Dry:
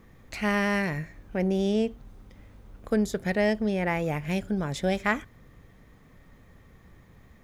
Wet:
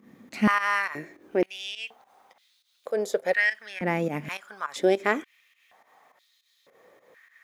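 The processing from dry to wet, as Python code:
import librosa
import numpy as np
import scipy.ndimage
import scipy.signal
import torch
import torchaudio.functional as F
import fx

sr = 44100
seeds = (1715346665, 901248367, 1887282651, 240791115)

y = fx.volume_shaper(x, sr, bpm=103, per_beat=2, depth_db=-13, release_ms=117.0, shape='fast start')
y = fx.filter_held_highpass(y, sr, hz=2.1, low_hz=230.0, high_hz=3900.0)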